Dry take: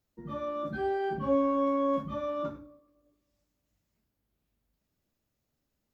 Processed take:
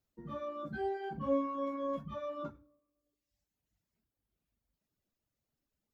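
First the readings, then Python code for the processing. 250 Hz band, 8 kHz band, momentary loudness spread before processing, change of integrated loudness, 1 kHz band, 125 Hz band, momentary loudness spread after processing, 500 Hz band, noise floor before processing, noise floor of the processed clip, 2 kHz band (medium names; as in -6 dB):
-7.5 dB, no reading, 11 LU, -7.0 dB, -7.0 dB, -5.0 dB, 10 LU, -7.0 dB, -82 dBFS, under -85 dBFS, -6.0 dB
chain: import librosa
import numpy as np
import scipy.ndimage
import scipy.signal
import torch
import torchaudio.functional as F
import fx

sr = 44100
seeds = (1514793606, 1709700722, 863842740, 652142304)

y = fx.dereverb_blind(x, sr, rt60_s=1.2)
y = y * 10.0 ** (-4.0 / 20.0)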